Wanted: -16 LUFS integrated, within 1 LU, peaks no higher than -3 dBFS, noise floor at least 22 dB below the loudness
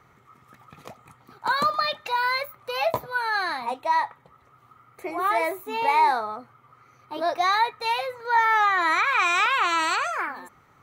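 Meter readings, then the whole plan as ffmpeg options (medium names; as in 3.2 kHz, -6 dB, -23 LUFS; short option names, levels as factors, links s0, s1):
loudness -23.5 LUFS; peak level -9.5 dBFS; loudness target -16.0 LUFS
-> -af "volume=2.37,alimiter=limit=0.708:level=0:latency=1"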